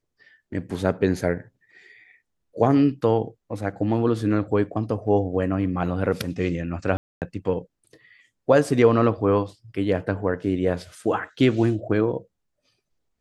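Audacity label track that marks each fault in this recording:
6.970000	7.220000	drop-out 248 ms

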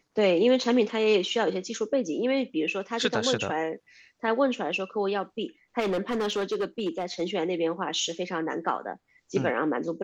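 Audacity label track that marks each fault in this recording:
0.640000	0.640000	drop-out 2.5 ms
5.790000	7.220000	clipping −23.5 dBFS

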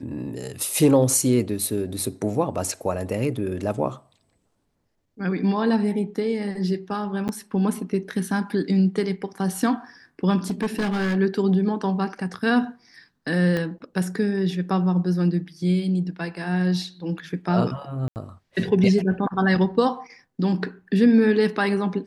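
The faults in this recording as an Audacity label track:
7.280000	7.290000	drop-out 9.4 ms
10.500000	11.170000	clipping −19.5 dBFS
13.570000	13.570000	click −14 dBFS
18.080000	18.160000	drop-out 79 ms

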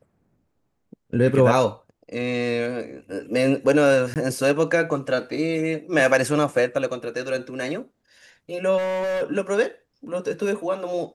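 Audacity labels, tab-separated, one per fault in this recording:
4.140000	4.160000	drop-out 18 ms
8.770000	9.230000	clipping −22.5 dBFS

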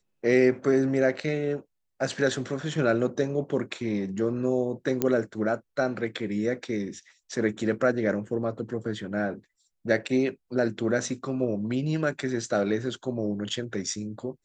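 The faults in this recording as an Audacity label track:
5.020000	5.020000	click −10 dBFS

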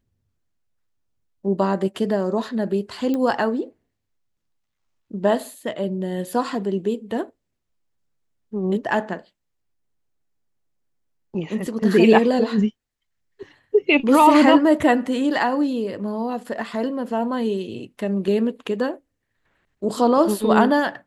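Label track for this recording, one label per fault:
3.140000	3.140000	click −14 dBFS

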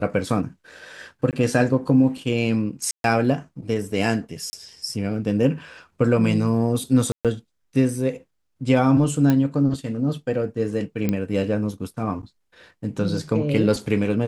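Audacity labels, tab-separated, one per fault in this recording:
1.310000	1.330000	drop-out 18 ms
2.910000	3.040000	drop-out 132 ms
4.500000	4.530000	drop-out 30 ms
7.120000	7.250000	drop-out 127 ms
9.300000	9.300000	click −8 dBFS
11.090000	11.090000	click −10 dBFS

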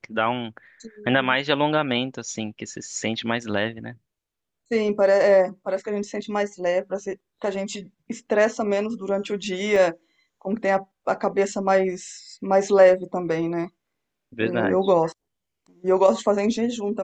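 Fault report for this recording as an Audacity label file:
9.760000	9.760000	drop-out 2.1 ms

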